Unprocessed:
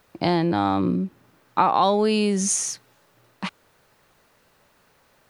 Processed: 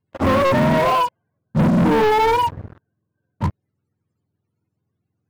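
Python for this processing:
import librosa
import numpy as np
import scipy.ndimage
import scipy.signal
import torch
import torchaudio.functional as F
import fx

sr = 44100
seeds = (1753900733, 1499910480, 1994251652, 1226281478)

y = fx.octave_mirror(x, sr, pivot_hz=430.0)
y = fx.leveller(y, sr, passes=5)
y = F.gain(torch.from_numpy(y), -5.0).numpy()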